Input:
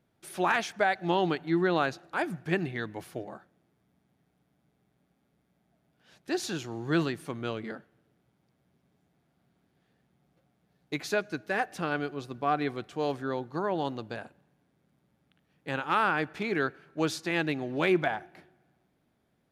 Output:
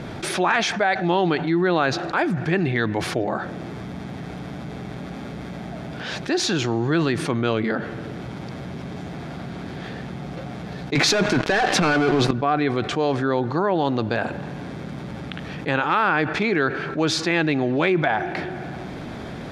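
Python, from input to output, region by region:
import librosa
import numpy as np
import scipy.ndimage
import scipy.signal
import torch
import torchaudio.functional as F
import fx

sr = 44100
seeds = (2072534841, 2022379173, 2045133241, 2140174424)

y = fx.chain(x, sr, fx.highpass(hz=110.0, slope=24),
    fx.leveller(passes=5),
    fx.over_compress(threshold_db=-23.0, ratio=-1.0), at=(10.95, 12.31))
y = scipy.signal.sosfilt(scipy.signal.butter(2, 5300.0, 'lowpass', fs=sr, output='sos'), y)
y = fx.notch(y, sr, hz=2900.0, q=23.0)
y = fx.env_flatten(y, sr, amount_pct=70)
y = y * 10.0 ** (3.0 / 20.0)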